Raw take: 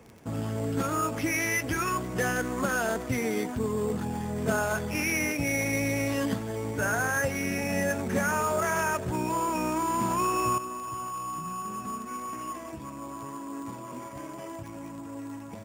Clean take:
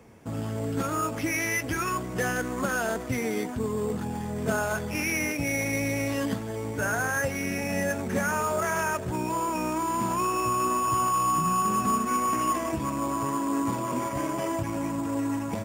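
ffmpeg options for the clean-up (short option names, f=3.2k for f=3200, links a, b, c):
-af "adeclick=t=4,asetnsamples=n=441:p=0,asendcmd='10.58 volume volume 10.5dB',volume=0dB"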